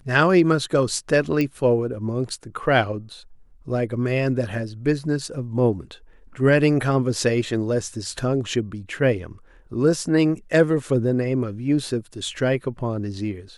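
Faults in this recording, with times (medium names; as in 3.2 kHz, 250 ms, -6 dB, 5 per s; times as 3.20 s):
1.41 s: pop -12 dBFS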